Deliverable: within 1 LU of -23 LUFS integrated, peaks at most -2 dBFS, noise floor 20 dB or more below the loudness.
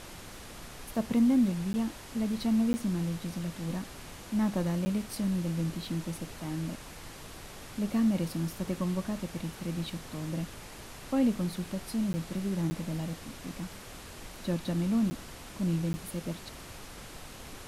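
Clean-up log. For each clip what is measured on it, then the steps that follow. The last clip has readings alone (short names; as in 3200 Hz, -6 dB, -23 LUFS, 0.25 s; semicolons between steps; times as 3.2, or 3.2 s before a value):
dropouts 7; longest dropout 10 ms; noise floor -47 dBFS; noise floor target -52 dBFS; loudness -32.0 LUFS; peak -17.5 dBFS; loudness target -23.0 LUFS
-> interpolate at 1.73/2.73/4.85/12.13/12.7/15.1/15.93, 10 ms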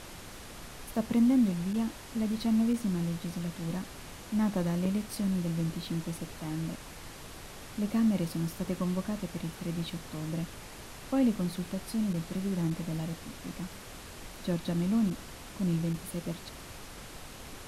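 dropouts 0; noise floor -47 dBFS; noise floor target -52 dBFS
-> noise print and reduce 6 dB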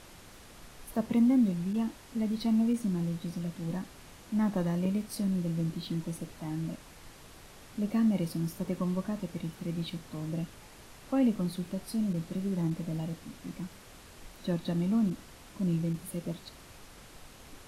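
noise floor -52 dBFS; loudness -32.0 LUFS; peak -17.5 dBFS; loudness target -23.0 LUFS
-> gain +9 dB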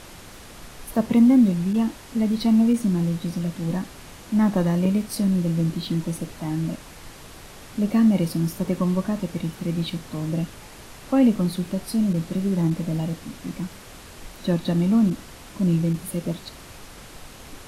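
loudness -23.0 LUFS; peak -8.5 dBFS; noise floor -43 dBFS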